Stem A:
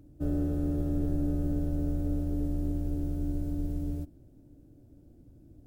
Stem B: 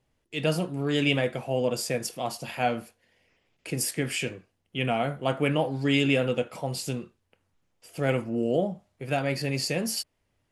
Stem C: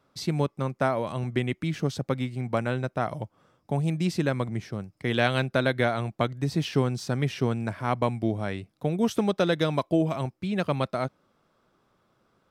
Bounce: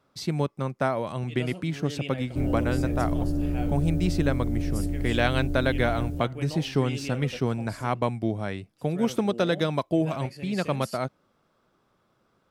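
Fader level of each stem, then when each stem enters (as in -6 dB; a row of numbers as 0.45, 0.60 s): +2.5, -13.0, -0.5 dB; 2.15, 0.95, 0.00 s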